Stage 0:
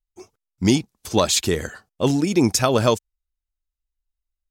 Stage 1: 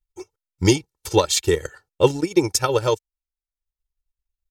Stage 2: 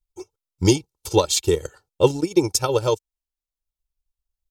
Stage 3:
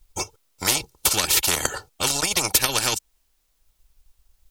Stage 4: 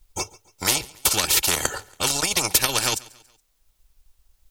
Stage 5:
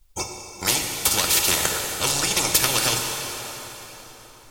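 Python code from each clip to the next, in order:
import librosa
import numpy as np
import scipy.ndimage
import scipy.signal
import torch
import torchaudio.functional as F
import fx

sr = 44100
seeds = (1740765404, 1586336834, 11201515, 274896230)

y1 = x + 0.87 * np.pad(x, (int(2.2 * sr / 1000.0), 0))[:len(x)]
y1 = fx.rider(y1, sr, range_db=3, speed_s=0.5)
y1 = fx.transient(y1, sr, attack_db=4, sustain_db=-10)
y1 = y1 * 10.0 ** (-3.0 / 20.0)
y2 = fx.peak_eq(y1, sr, hz=1800.0, db=-10.5, octaves=0.68)
y3 = fx.spectral_comp(y2, sr, ratio=10.0)
y3 = y3 * 10.0 ** (1.0 / 20.0)
y4 = fx.echo_feedback(y3, sr, ms=140, feedback_pct=44, wet_db=-22.5)
y5 = fx.rev_plate(y4, sr, seeds[0], rt60_s=4.2, hf_ratio=0.8, predelay_ms=0, drr_db=1.5)
y5 = y5 * 10.0 ** (-1.0 / 20.0)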